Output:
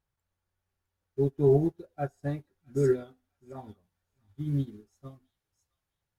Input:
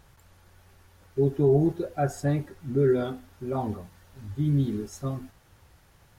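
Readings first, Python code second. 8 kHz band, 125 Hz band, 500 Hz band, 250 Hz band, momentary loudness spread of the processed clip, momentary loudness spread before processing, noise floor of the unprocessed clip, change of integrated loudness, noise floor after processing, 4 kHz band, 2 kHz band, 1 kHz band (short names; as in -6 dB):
under -10 dB, -4.5 dB, -2.5 dB, -5.0 dB, 22 LU, 16 LU, -59 dBFS, -2.0 dB, under -85 dBFS, under -10 dB, -6.5 dB, -8.0 dB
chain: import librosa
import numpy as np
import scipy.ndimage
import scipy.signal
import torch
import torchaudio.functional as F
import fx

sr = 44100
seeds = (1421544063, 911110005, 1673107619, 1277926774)

y = fx.echo_wet_highpass(x, sr, ms=660, feedback_pct=36, hz=2500.0, wet_db=-5.0)
y = fx.upward_expand(y, sr, threshold_db=-37.0, expansion=2.5)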